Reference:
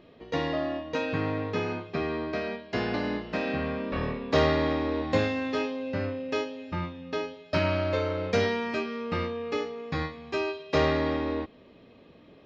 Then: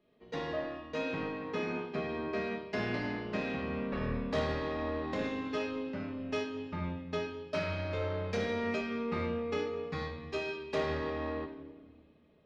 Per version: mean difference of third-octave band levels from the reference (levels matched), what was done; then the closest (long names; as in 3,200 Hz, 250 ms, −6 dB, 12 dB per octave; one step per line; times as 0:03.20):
3.5 dB: downward compressor 2.5 to 1, threshold −31 dBFS, peak gain reduction 9 dB
soft clipping −25.5 dBFS, distortion −19 dB
rectangular room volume 1,500 cubic metres, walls mixed, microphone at 1.4 metres
multiband upward and downward expander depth 70%
level −2.5 dB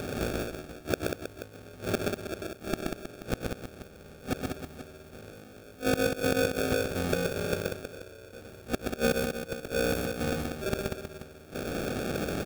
15.5 dB: compressor on every frequency bin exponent 0.6
gate with flip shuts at −19 dBFS, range −30 dB
sample-rate reduction 1,000 Hz, jitter 0%
multi-tap delay 127/146/190/318/482 ms −3.5/−13.5/−6/−10.5/−14.5 dB
level +5 dB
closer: first